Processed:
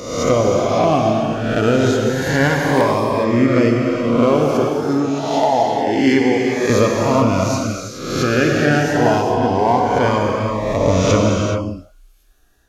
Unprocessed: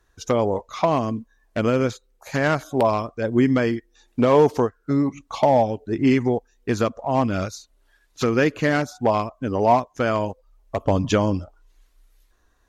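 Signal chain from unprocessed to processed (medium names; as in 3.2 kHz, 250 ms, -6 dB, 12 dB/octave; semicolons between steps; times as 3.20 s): reverse spectral sustain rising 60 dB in 0.93 s; 4.45–6.70 s: high-pass 410 Hz 6 dB/octave; gain riding within 4 dB 0.5 s; gated-style reverb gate 450 ms flat, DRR 0 dB; Shepard-style phaser rising 0.27 Hz; trim +3.5 dB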